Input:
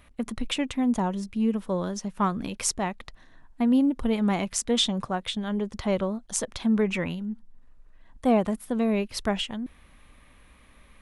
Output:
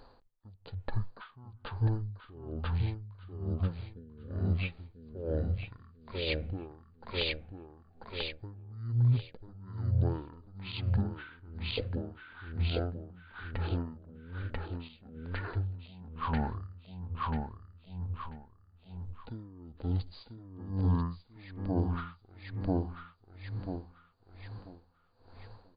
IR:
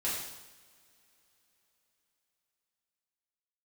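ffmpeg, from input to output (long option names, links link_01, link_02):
-filter_complex "[0:a]equalizer=frequency=1100:width_type=o:width=0.87:gain=4,aecho=1:1:423|846|1269|1692|2115:0.668|0.241|0.0866|0.0312|0.0112,asetrate=18846,aresample=44100,asplit=2[link_01][link_02];[1:a]atrim=start_sample=2205,lowpass=frequency=2300:width=0.5412,lowpass=frequency=2300:width=1.3066[link_03];[link_02][link_03]afir=irnorm=-1:irlink=0,volume=-28.5dB[link_04];[link_01][link_04]amix=inputs=2:normalize=0,alimiter=limit=-19dB:level=0:latency=1:release=319,aeval=exprs='val(0)*pow(10,-24*(0.5-0.5*cos(2*PI*1.1*n/s))/20)':channel_layout=same"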